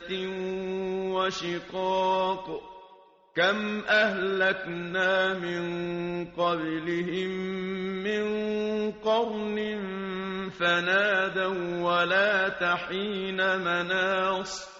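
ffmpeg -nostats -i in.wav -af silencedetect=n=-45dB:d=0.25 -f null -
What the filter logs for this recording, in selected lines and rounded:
silence_start: 2.99
silence_end: 3.36 | silence_duration: 0.37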